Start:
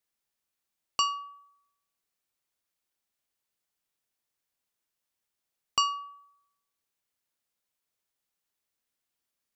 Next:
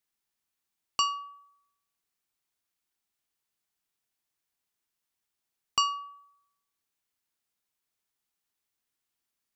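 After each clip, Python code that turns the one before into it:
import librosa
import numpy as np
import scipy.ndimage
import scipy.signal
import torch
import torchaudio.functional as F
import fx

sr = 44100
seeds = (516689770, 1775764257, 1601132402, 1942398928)

y = fx.peak_eq(x, sr, hz=550.0, db=-9.0, octaves=0.23)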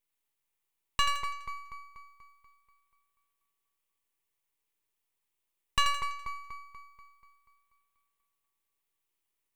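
y = fx.fixed_phaser(x, sr, hz=1000.0, stages=8)
y = fx.echo_split(y, sr, split_hz=1300.0, low_ms=242, high_ms=83, feedback_pct=52, wet_db=-5.0)
y = np.maximum(y, 0.0)
y = y * 10.0 ** (5.0 / 20.0)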